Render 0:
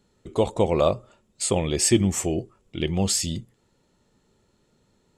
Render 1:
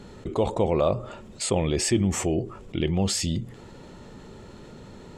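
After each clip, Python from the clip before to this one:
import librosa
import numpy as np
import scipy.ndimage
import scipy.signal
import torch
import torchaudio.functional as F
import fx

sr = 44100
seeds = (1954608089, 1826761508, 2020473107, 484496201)

y = fx.lowpass(x, sr, hz=2700.0, slope=6)
y = fx.env_flatten(y, sr, amount_pct=50)
y = F.gain(torch.from_numpy(y), -4.5).numpy()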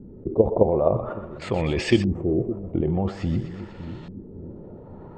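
y = fx.level_steps(x, sr, step_db=10)
y = fx.echo_split(y, sr, split_hz=380.0, low_ms=561, high_ms=123, feedback_pct=52, wet_db=-12.0)
y = fx.filter_lfo_lowpass(y, sr, shape='saw_up', hz=0.49, low_hz=280.0, high_hz=3700.0, q=1.4)
y = F.gain(torch.from_numpy(y), 6.5).numpy()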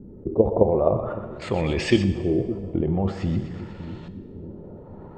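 y = fx.rev_plate(x, sr, seeds[0], rt60_s=1.6, hf_ratio=0.9, predelay_ms=0, drr_db=11.0)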